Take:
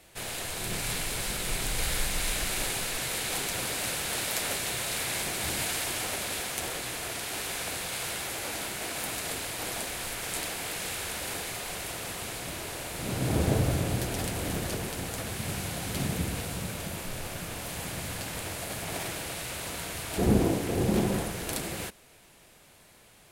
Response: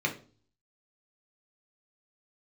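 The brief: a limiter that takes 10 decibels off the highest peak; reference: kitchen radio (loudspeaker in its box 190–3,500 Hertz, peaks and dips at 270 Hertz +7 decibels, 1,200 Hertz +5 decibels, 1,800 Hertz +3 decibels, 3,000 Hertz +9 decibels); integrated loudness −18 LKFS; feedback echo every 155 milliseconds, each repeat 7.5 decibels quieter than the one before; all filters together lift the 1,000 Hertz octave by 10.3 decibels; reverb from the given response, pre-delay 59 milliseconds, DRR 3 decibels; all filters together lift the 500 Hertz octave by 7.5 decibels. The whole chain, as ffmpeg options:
-filter_complex "[0:a]equalizer=frequency=500:width_type=o:gain=6.5,equalizer=frequency=1000:width_type=o:gain=9,alimiter=limit=-16.5dB:level=0:latency=1,aecho=1:1:155|310|465|620|775:0.422|0.177|0.0744|0.0312|0.0131,asplit=2[link_01][link_02];[1:a]atrim=start_sample=2205,adelay=59[link_03];[link_02][link_03]afir=irnorm=-1:irlink=0,volume=-11.5dB[link_04];[link_01][link_04]amix=inputs=2:normalize=0,highpass=190,equalizer=frequency=270:width_type=q:width=4:gain=7,equalizer=frequency=1200:width_type=q:width=4:gain=5,equalizer=frequency=1800:width_type=q:width=4:gain=3,equalizer=frequency=3000:width_type=q:width=4:gain=9,lowpass=frequency=3500:width=0.5412,lowpass=frequency=3500:width=1.3066,volume=8.5dB"

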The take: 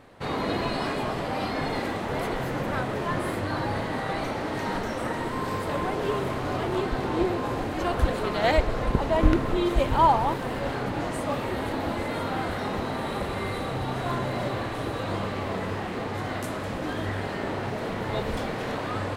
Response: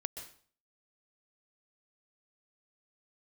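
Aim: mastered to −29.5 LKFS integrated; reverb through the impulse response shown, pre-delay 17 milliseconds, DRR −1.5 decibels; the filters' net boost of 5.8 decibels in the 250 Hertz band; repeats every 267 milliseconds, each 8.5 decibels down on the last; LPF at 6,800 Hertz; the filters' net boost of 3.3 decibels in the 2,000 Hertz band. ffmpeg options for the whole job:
-filter_complex "[0:a]lowpass=6800,equalizer=frequency=250:width_type=o:gain=7.5,equalizer=frequency=2000:width_type=o:gain=4,aecho=1:1:267|534|801|1068:0.376|0.143|0.0543|0.0206,asplit=2[link_01][link_02];[1:a]atrim=start_sample=2205,adelay=17[link_03];[link_02][link_03]afir=irnorm=-1:irlink=0,volume=2dB[link_04];[link_01][link_04]amix=inputs=2:normalize=0,volume=-8.5dB"

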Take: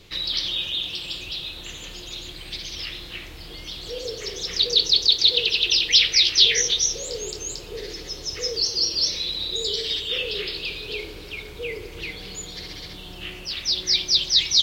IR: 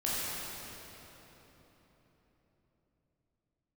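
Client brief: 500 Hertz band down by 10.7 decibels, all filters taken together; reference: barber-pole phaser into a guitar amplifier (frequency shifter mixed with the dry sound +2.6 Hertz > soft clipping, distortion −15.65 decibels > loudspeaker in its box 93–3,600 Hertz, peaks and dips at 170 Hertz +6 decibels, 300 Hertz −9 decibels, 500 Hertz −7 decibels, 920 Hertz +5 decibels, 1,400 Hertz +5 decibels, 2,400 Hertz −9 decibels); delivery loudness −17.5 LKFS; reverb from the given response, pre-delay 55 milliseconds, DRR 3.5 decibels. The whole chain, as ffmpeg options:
-filter_complex "[0:a]equalizer=frequency=500:width_type=o:gain=-7,asplit=2[link_01][link_02];[1:a]atrim=start_sample=2205,adelay=55[link_03];[link_02][link_03]afir=irnorm=-1:irlink=0,volume=-11.5dB[link_04];[link_01][link_04]amix=inputs=2:normalize=0,asplit=2[link_05][link_06];[link_06]afreqshift=2.6[link_07];[link_05][link_07]amix=inputs=2:normalize=1,asoftclip=threshold=-12.5dB,highpass=93,equalizer=frequency=170:width_type=q:width=4:gain=6,equalizer=frequency=300:width_type=q:width=4:gain=-9,equalizer=frequency=500:width_type=q:width=4:gain=-7,equalizer=frequency=920:width_type=q:width=4:gain=5,equalizer=frequency=1400:width_type=q:width=4:gain=5,equalizer=frequency=2400:width_type=q:width=4:gain=-9,lowpass=frequency=3600:width=0.5412,lowpass=frequency=3600:width=1.3066,volume=13.5dB"

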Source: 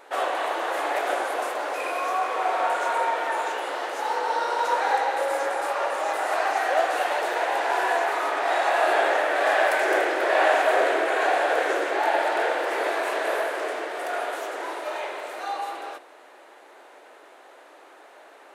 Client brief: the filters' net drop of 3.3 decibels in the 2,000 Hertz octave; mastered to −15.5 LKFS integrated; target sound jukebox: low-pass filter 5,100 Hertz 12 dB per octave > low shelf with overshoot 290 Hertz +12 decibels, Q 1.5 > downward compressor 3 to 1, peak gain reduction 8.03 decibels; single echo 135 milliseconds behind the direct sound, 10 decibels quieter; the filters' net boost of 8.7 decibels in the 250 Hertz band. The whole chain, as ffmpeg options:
ffmpeg -i in.wav -af "lowpass=5100,equalizer=frequency=250:width_type=o:gain=8.5,lowshelf=frequency=290:width_type=q:width=1.5:gain=12,equalizer=frequency=2000:width_type=o:gain=-4,aecho=1:1:135:0.316,acompressor=threshold=-27dB:ratio=3,volume=14.5dB" out.wav

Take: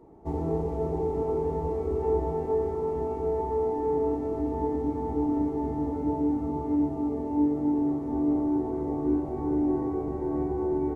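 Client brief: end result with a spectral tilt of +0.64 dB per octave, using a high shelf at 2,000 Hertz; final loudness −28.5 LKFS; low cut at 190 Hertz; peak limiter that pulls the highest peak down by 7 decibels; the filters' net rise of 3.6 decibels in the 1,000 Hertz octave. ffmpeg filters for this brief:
ffmpeg -i in.wav -af "highpass=190,equalizer=frequency=1000:width_type=o:gain=6,highshelf=frequency=2000:gain=-9,volume=2.5dB,alimiter=limit=-20.5dB:level=0:latency=1" out.wav

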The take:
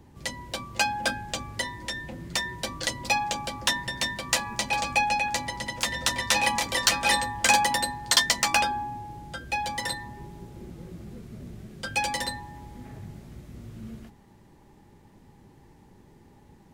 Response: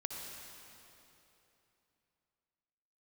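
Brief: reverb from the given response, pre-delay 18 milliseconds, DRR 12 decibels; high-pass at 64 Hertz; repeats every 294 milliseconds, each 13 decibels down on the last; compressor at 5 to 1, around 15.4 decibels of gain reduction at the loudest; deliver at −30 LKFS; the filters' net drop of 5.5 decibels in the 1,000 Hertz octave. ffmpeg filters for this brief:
-filter_complex "[0:a]highpass=64,equalizer=frequency=1000:width_type=o:gain=-7,acompressor=threshold=-36dB:ratio=5,aecho=1:1:294|588|882:0.224|0.0493|0.0108,asplit=2[link_01][link_02];[1:a]atrim=start_sample=2205,adelay=18[link_03];[link_02][link_03]afir=irnorm=-1:irlink=0,volume=-12dB[link_04];[link_01][link_04]amix=inputs=2:normalize=0,volume=8.5dB"

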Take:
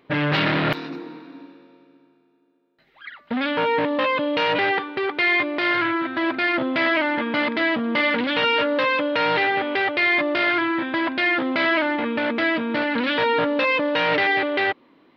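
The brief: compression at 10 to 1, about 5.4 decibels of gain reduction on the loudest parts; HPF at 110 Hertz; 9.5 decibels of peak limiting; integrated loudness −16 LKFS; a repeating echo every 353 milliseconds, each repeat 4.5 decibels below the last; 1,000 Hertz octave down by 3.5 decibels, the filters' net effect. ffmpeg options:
ffmpeg -i in.wav -af "highpass=110,equalizer=frequency=1000:width_type=o:gain=-4.5,acompressor=threshold=-23dB:ratio=10,alimiter=limit=-23.5dB:level=0:latency=1,aecho=1:1:353|706|1059|1412|1765|2118|2471|2824|3177:0.596|0.357|0.214|0.129|0.0772|0.0463|0.0278|0.0167|0.01,volume=13dB" out.wav

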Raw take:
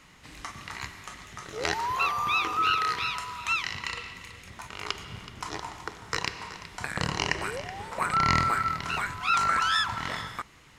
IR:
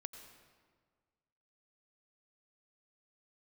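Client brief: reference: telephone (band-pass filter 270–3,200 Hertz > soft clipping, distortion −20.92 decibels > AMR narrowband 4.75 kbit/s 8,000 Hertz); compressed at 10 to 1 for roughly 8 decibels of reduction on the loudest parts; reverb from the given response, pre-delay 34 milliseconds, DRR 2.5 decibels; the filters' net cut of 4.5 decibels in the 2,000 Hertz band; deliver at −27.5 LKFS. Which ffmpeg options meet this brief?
-filter_complex "[0:a]equalizer=frequency=2000:width_type=o:gain=-5,acompressor=threshold=-28dB:ratio=10,asplit=2[link_01][link_02];[1:a]atrim=start_sample=2205,adelay=34[link_03];[link_02][link_03]afir=irnorm=-1:irlink=0,volume=1.5dB[link_04];[link_01][link_04]amix=inputs=2:normalize=0,highpass=270,lowpass=3200,asoftclip=threshold=-22.5dB,volume=11dB" -ar 8000 -c:a libopencore_amrnb -b:a 4750

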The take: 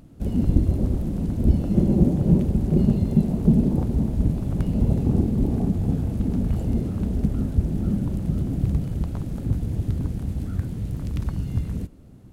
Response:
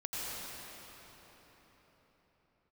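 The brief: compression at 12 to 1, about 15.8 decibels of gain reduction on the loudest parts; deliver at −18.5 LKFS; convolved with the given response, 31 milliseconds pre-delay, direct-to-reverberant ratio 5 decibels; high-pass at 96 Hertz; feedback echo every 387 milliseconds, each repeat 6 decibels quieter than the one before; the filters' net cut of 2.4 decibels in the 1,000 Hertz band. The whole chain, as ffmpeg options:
-filter_complex "[0:a]highpass=96,equalizer=frequency=1000:width_type=o:gain=-3.5,acompressor=threshold=-29dB:ratio=12,aecho=1:1:387|774|1161|1548|1935|2322:0.501|0.251|0.125|0.0626|0.0313|0.0157,asplit=2[link_01][link_02];[1:a]atrim=start_sample=2205,adelay=31[link_03];[link_02][link_03]afir=irnorm=-1:irlink=0,volume=-9dB[link_04];[link_01][link_04]amix=inputs=2:normalize=0,volume=13.5dB"

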